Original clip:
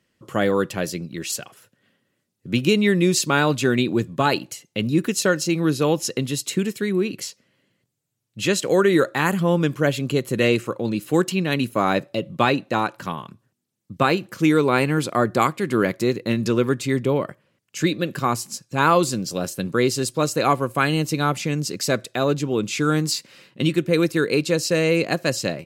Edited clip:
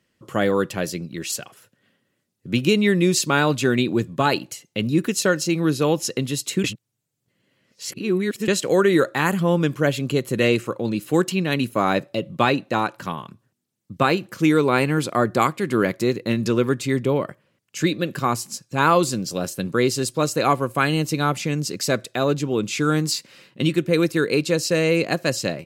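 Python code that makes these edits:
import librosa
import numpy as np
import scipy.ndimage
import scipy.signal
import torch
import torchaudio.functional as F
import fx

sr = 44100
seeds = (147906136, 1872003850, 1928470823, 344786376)

y = fx.edit(x, sr, fx.reverse_span(start_s=6.64, length_s=1.84), tone=tone)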